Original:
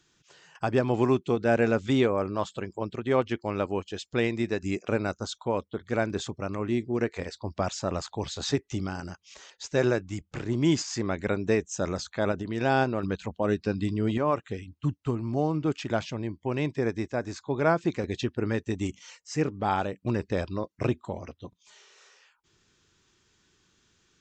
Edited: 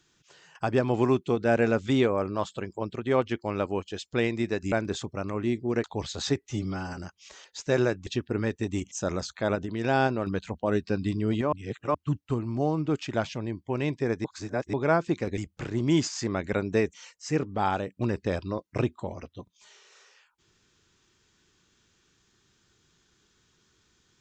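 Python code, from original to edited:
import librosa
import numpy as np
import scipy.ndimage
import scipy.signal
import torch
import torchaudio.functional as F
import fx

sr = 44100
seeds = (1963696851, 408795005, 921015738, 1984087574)

y = fx.edit(x, sr, fx.cut(start_s=4.72, length_s=1.25),
    fx.cut(start_s=7.09, length_s=0.97),
    fx.stretch_span(start_s=8.7, length_s=0.33, factor=1.5),
    fx.swap(start_s=10.12, length_s=1.56, other_s=18.14, other_length_s=0.85),
    fx.reverse_span(start_s=14.29, length_s=0.42),
    fx.reverse_span(start_s=17.01, length_s=0.49), tone=tone)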